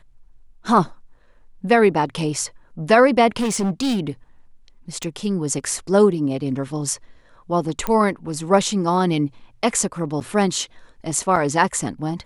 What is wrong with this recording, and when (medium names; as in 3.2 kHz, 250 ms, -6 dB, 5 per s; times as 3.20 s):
3.36–4.00 s: clipped -17.5 dBFS
5.03 s: pop -13 dBFS
7.87 s: pop -9 dBFS
10.20–10.21 s: dropout 8.2 ms
11.36 s: dropout 4 ms